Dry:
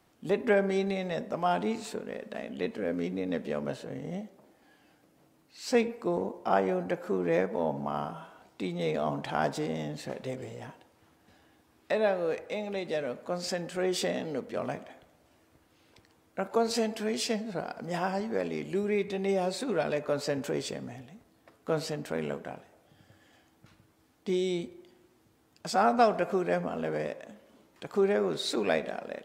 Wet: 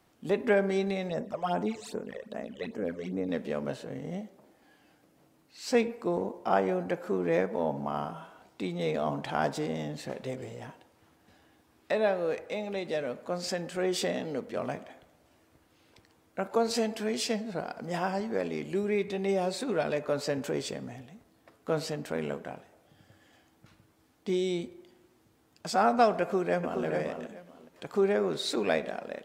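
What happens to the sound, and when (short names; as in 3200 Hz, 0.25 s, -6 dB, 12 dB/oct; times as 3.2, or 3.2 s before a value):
1.09–3.29 phaser stages 12, 2.5 Hz, lowest notch 230–4400 Hz
26.21–26.84 echo throw 0.42 s, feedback 20%, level -6.5 dB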